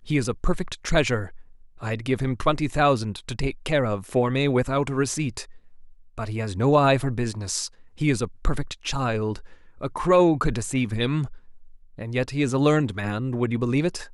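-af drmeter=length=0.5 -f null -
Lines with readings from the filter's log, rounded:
Channel 1: DR: 9.9
Overall DR: 9.9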